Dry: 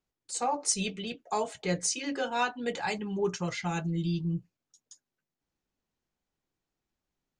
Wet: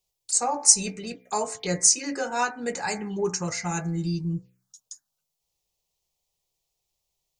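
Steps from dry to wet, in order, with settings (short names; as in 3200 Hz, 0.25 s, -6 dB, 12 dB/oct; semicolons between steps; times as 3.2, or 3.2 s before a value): high shelf 2000 Hz +11.5 dB; de-hum 62.66 Hz, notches 39; envelope phaser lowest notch 260 Hz, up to 3300 Hz, full sweep at -28.5 dBFS; gain +2.5 dB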